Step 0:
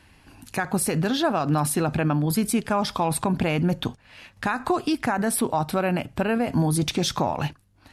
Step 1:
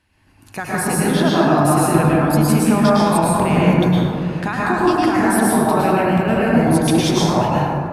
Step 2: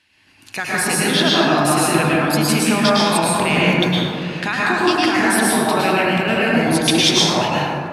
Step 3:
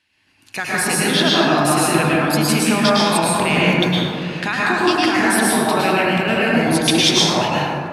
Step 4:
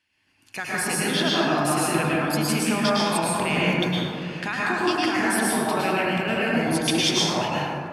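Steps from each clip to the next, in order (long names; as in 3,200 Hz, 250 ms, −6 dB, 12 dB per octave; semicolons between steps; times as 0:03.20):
automatic gain control gain up to 14 dB; dense smooth reverb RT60 2.6 s, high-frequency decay 0.3×, pre-delay 95 ms, DRR −7.5 dB; level −11 dB
meter weighting curve D; level −1 dB
noise gate −39 dBFS, range −6 dB
notch filter 3,900 Hz, Q 10; level −6.5 dB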